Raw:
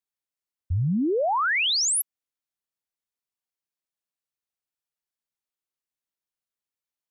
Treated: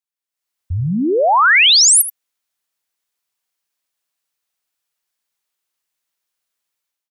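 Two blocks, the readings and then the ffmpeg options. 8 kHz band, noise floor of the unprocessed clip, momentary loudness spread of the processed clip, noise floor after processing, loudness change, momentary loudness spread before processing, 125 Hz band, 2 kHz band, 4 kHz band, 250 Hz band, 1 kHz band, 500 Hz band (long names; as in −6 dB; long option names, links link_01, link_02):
+13.5 dB, below −85 dBFS, 15 LU, below −85 dBFS, +13.0 dB, 9 LU, +5.0 dB, +13.0 dB, +13.5 dB, +6.0 dB, +11.5 dB, +9.0 dB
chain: -af "dynaudnorm=framelen=160:gausssize=5:maxgain=13.5dB,lowshelf=frequency=480:gain=-9.5,aecho=1:1:80:0.2"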